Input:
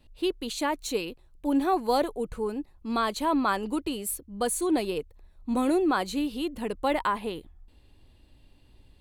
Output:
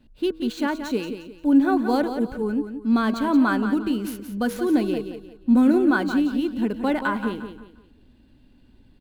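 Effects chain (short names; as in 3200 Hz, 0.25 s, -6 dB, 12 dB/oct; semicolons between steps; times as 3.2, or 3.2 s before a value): median filter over 5 samples; de-hum 159.7 Hz, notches 10; small resonant body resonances 230/1500 Hz, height 13 dB, ringing for 30 ms; on a send: feedback echo 0.176 s, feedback 32%, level -9 dB; on the sum: gain -1 dB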